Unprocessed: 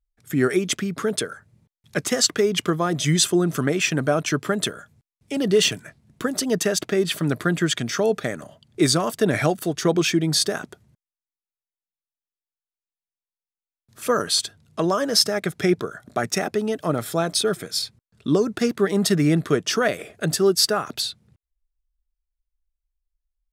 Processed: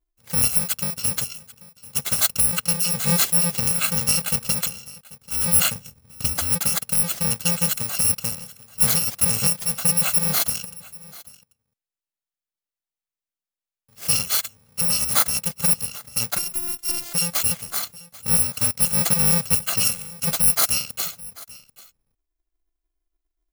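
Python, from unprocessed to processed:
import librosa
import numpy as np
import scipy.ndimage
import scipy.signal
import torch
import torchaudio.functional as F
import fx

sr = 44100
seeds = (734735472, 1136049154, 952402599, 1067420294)

y = fx.bit_reversed(x, sr, seeds[0], block=128)
y = fx.low_shelf(y, sr, hz=180.0, db=9.0, at=(5.75, 6.47))
y = fx.robotise(y, sr, hz=348.0, at=(16.38, 17.15))
y = y + 10.0 ** (-20.5 / 20.0) * np.pad(y, (int(788 * sr / 1000.0), 0))[:len(y)]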